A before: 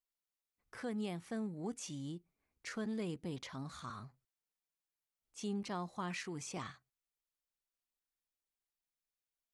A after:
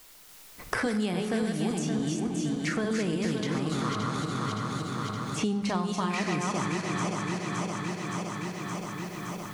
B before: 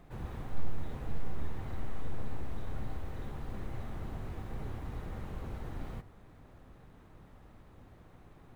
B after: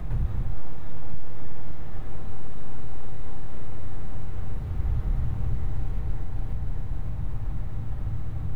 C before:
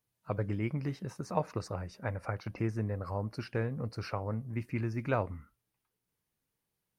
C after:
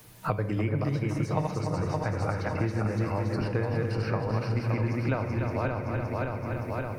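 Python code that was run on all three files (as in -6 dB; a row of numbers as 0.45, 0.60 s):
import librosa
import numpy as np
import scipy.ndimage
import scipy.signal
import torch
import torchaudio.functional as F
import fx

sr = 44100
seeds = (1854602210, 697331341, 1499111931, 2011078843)

p1 = fx.reverse_delay_fb(x, sr, ms=284, feedback_pct=63, wet_db=-3)
p2 = p1 + fx.echo_single(p1, sr, ms=292, db=-10.5, dry=0)
p3 = fx.room_shoebox(p2, sr, seeds[0], volume_m3=540.0, walls='mixed', distance_m=0.51)
p4 = fx.band_squash(p3, sr, depth_pct=100)
y = librosa.util.normalize(p4) * 10.0 ** (-12 / 20.0)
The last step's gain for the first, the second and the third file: +10.0, -3.0, +2.5 dB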